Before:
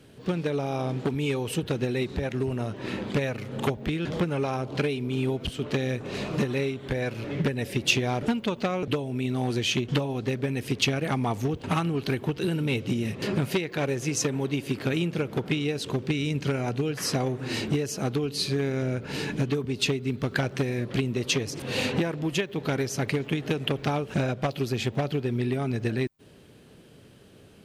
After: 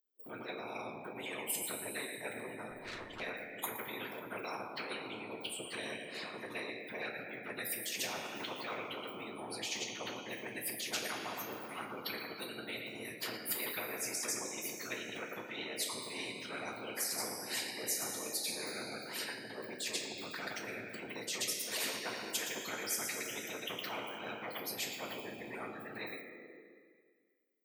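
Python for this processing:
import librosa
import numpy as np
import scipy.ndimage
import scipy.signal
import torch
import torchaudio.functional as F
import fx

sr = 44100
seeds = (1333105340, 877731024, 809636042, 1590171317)

p1 = fx.bin_expand(x, sr, power=3.0)
p2 = fx.peak_eq(p1, sr, hz=780.0, db=-9.0, octaves=2.3)
p3 = p2 + fx.echo_single(p2, sr, ms=115, db=-19.5, dry=0)
p4 = fx.over_compress(p3, sr, threshold_db=-45.0, ratio=-1.0)
p5 = fx.whisperise(p4, sr, seeds[0])
p6 = scipy.signal.sosfilt(scipy.signal.butter(4, 350.0, 'highpass', fs=sr, output='sos'), p5)
p7 = fx.tube_stage(p6, sr, drive_db=62.0, bias=0.55, at=(2.71, 3.2))
p8 = fx.rev_double_slope(p7, sr, seeds[1], early_s=0.25, late_s=1.8, knee_db=-21, drr_db=2.5)
p9 = fx.spectral_comp(p8, sr, ratio=4.0)
y = p9 * librosa.db_to_amplitude(7.0)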